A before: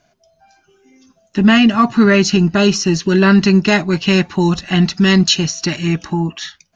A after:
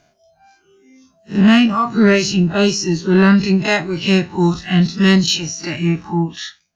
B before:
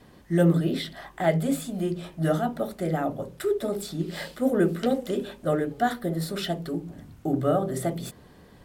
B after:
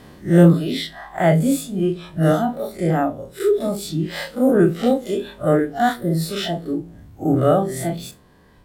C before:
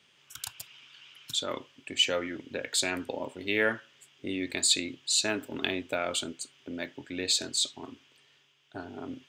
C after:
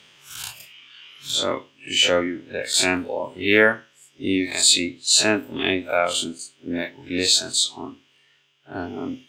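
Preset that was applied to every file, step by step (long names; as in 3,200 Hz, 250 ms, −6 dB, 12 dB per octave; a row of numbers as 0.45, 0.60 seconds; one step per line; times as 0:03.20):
spectrum smeared in time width 105 ms
reverb reduction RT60 1.9 s
harmonic generator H 5 −27 dB, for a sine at −4 dBFS
normalise the peak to −1.5 dBFS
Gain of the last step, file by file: +2.5, +10.0, +12.5 decibels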